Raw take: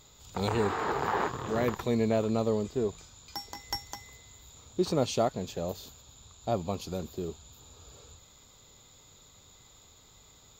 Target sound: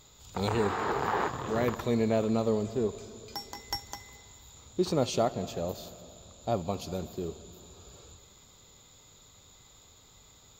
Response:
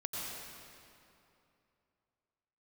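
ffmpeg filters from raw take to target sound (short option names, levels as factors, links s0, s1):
-filter_complex "[0:a]asplit=2[s0][s1];[1:a]atrim=start_sample=2205,lowpass=3900,adelay=67[s2];[s1][s2]afir=irnorm=-1:irlink=0,volume=0.141[s3];[s0][s3]amix=inputs=2:normalize=0"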